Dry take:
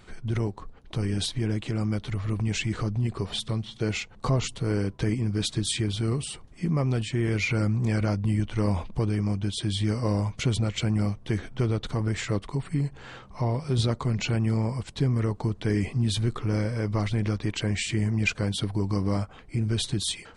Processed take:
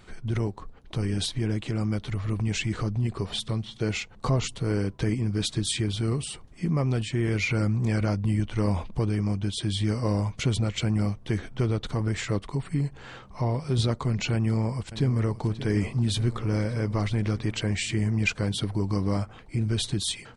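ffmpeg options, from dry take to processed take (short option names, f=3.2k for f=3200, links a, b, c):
-filter_complex "[0:a]asplit=2[a][b];[b]afade=t=in:st=14.33:d=0.01,afade=t=out:st=15.44:d=0.01,aecho=0:1:580|1160|1740|2320|2900|3480|4060|4640|5220|5800|6380:0.211349|0.158512|0.118884|0.0891628|0.0668721|0.0501541|0.0376156|0.0282117|0.0211588|0.0158691|0.0119018[c];[a][c]amix=inputs=2:normalize=0"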